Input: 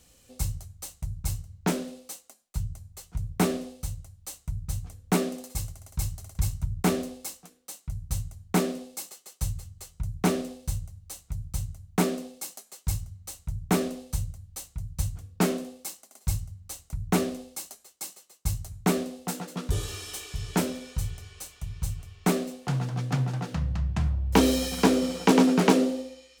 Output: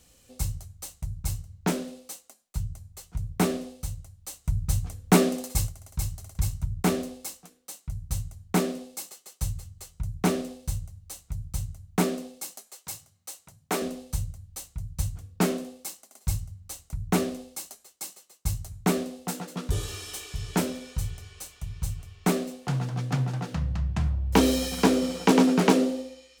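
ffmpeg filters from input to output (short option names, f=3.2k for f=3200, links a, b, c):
-filter_complex "[0:a]asplit=3[a][b][c];[a]afade=t=out:st=4.44:d=0.02[d];[b]acontrast=55,afade=t=in:st=4.44:d=0.02,afade=t=out:st=5.67:d=0.02[e];[c]afade=t=in:st=5.67:d=0.02[f];[d][e][f]amix=inputs=3:normalize=0,asettb=1/sr,asplit=3[g][h][i];[g]atrim=end=12.684[j];[h]atrim=start=12.68:end=13.82,asetpts=PTS-STARTPTS,afade=t=in:d=0.004:c=qsin,afade=t=out:st=1.136:d=0.004:c=qsin,highpass=380[k];[i]atrim=start=13.816[l];[j][k]acrossfade=d=0.004:c1=hsin:c2=qsin[m];[m][l]acrossfade=d=0.004:c1=qsin:c2=hsin"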